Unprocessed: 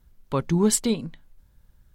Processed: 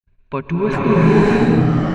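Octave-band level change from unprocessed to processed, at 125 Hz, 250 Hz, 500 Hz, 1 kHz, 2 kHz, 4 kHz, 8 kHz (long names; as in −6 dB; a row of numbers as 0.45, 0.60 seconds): +14.0 dB, +11.0 dB, +12.0 dB, +14.5 dB, +19.5 dB, +0.5 dB, below −15 dB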